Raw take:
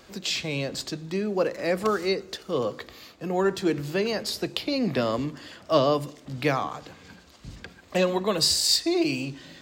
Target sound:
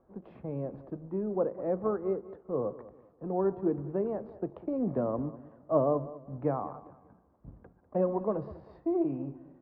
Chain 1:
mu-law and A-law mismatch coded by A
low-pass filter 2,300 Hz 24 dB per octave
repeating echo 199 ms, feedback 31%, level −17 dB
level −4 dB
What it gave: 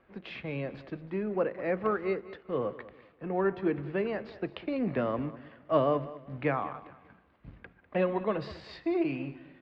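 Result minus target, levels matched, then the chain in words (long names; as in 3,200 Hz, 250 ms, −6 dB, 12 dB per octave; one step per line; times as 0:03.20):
2,000 Hz band +18.0 dB
mu-law and A-law mismatch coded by A
low-pass filter 1,000 Hz 24 dB per octave
repeating echo 199 ms, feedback 31%, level −17 dB
level −4 dB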